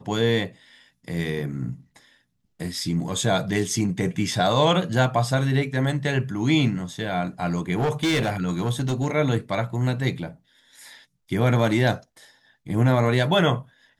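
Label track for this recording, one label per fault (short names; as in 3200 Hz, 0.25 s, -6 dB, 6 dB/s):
7.770000	9.110000	clipped -18.5 dBFS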